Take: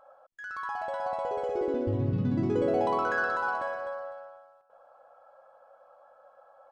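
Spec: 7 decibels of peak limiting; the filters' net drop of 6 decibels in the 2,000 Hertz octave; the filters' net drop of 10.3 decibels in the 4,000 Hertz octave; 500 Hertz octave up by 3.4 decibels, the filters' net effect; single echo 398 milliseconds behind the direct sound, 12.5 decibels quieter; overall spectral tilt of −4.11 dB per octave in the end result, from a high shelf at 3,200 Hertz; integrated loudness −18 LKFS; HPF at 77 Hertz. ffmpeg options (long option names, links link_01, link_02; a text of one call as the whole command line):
ffmpeg -i in.wav -af "highpass=77,equalizer=frequency=500:width_type=o:gain=4.5,equalizer=frequency=2000:width_type=o:gain=-7,highshelf=frequency=3200:gain=-5,equalizer=frequency=4000:width_type=o:gain=-7.5,alimiter=limit=-20.5dB:level=0:latency=1,aecho=1:1:398:0.237,volume=12dB" out.wav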